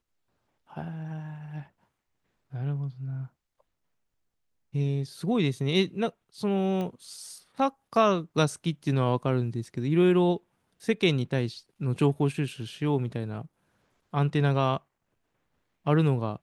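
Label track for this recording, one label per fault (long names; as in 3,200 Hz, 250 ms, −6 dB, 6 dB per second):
6.810000	6.810000	click −22 dBFS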